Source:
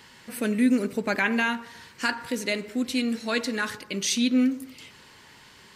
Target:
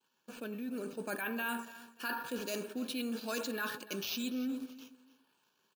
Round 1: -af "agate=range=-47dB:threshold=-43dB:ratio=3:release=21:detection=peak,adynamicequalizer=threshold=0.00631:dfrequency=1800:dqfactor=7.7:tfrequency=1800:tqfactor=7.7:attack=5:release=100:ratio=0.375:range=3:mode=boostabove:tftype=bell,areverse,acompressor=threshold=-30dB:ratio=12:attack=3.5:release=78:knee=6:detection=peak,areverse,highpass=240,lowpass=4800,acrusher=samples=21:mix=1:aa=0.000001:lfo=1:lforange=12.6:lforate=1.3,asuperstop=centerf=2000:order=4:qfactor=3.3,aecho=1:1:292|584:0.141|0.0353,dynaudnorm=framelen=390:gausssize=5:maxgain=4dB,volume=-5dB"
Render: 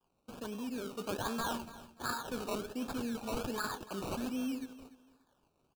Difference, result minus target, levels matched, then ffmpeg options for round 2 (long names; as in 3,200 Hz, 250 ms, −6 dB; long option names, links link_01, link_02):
sample-and-hold swept by an LFO: distortion +12 dB
-af "agate=range=-47dB:threshold=-43dB:ratio=3:release=21:detection=peak,adynamicequalizer=threshold=0.00631:dfrequency=1800:dqfactor=7.7:tfrequency=1800:tqfactor=7.7:attack=5:release=100:ratio=0.375:range=3:mode=boostabove:tftype=bell,areverse,acompressor=threshold=-30dB:ratio=12:attack=3.5:release=78:knee=6:detection=peak,areverse,highpass=240,lowpass=4800,acrusher=samples=4:mix=1:aa=0.000001:lfo=1:lforange=2.4:lforate=1.3,asuperstop=centerf=2000:order=4:qfactor=3.3,aecho=1:1:292|584:0.141|0.0353,dynaudnorm=framelen=390:gausssize=5:maxgain=4dB,volume=-5dB"